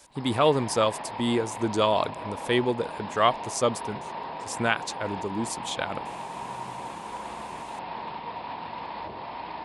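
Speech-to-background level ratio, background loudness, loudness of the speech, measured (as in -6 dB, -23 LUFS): 9.5 dB, -36.5 LUFS, -27.0 LUFS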